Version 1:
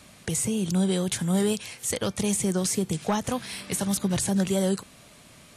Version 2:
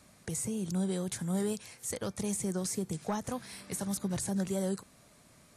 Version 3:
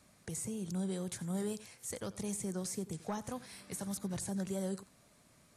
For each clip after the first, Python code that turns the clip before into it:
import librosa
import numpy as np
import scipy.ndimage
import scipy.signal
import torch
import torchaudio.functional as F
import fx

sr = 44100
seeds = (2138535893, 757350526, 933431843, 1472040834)

y1 = fx.peak_eq(x, sr, hz=3000.0, db=-7.5, octaves=0.75)
y1 = y1 * 10.0 ** (-8.0 / 20.0)
y2 = y1 + 10.0 ** (-18.0 / 20.0) * np.pad(y1, (int(89 * sr / 1000.0), 0))[:len(y1)]
y2 = y2 * 10.0 ** (-5.0 / 20.0)